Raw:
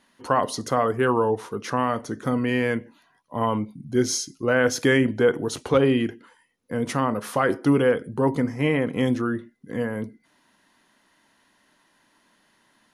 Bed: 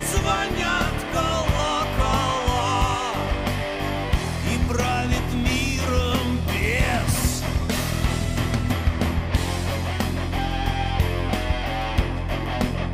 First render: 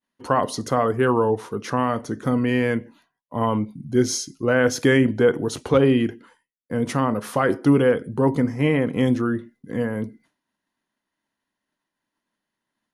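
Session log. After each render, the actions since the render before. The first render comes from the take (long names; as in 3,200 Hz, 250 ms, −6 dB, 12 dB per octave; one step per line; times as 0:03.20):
downward expander −50 dBFS
low-shelf EQ 420 Hz +4 dB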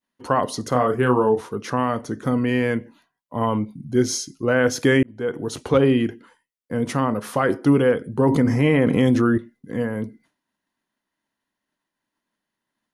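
0:00.69–0:01.41: double-tracking delay 32 ms −5.5 dB
0:05.03–0:05.61: fade in
0:08.19–0:09.38: envelope flattener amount 70%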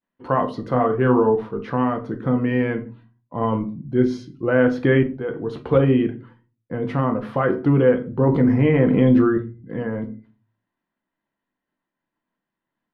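high-frequency loss of the air 400 metres
rectangular room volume 160 cubic metres, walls furnished, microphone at 0.76 metres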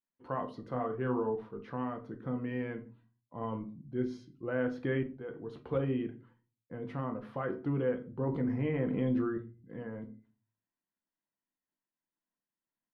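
level −15.5 dB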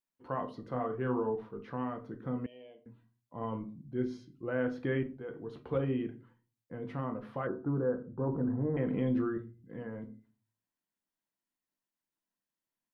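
0:02.46–0:02.86: pair of resonant band-passes 1,400 Hz, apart 2.3 octaves
0:07.47–0:08.77: Butterworth low-pass 1,600 Hz 72 dB per octave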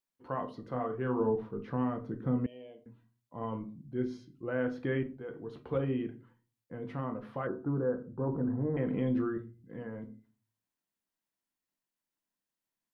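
0:01.20–0:02.84: low-shelf EQ 420 Hz +7.5 dB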